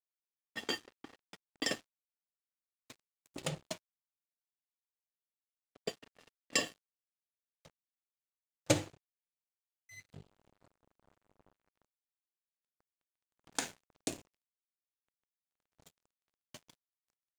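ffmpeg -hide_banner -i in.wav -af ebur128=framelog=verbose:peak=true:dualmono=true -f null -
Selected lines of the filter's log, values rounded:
Integrated loudness:
  I:         -35.3 LUFS
  Threshold: -48.1 LUFS
Loudness range:
  LRA:        11.4 LU
  Threshold: -61.3 LUFS
  LRA low:   -47.8 LUFS
  LRA high:  -36.4 LUFS
True peak:
  Peak:      -13.3 dBFS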